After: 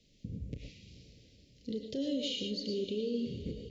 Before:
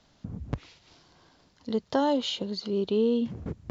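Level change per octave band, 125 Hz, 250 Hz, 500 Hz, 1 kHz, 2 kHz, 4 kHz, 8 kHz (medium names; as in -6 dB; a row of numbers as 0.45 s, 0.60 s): -5.5 dB, -7.5 dB, -9.5 dB, under -40 dB, -9.5 dB, -3.5 dB, no reading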